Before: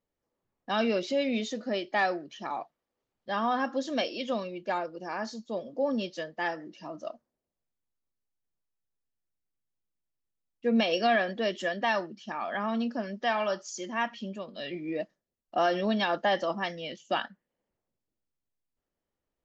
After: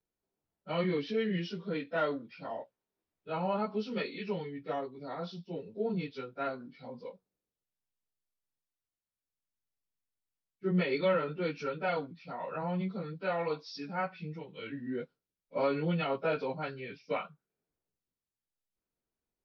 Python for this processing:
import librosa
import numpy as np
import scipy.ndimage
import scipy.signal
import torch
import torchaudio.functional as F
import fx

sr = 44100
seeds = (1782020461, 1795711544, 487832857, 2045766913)

y = fx.pitch_bins(x, sr, semitones=-4.0)
y = F.gain(torch.from_numpy(y), -2.5).numpy()